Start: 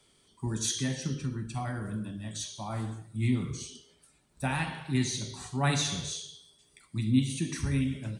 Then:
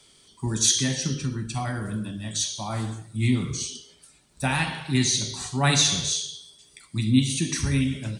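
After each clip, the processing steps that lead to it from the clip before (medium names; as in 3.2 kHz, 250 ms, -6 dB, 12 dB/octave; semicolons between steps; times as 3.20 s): peaking EQ 5.3 kHz +7 dB 2 oct; trim +5 dB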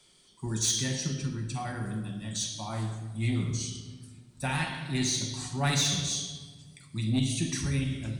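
saturation -13 dBFS, distortion -19 dB; simulated room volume 1600 m³, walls mixed, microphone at 0.93 m; trim -6 dB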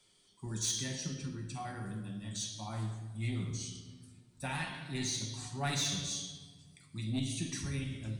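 flange 0.37 Hz, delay 9.4 ms, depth 2 ms, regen +58%; trim -2.5 dB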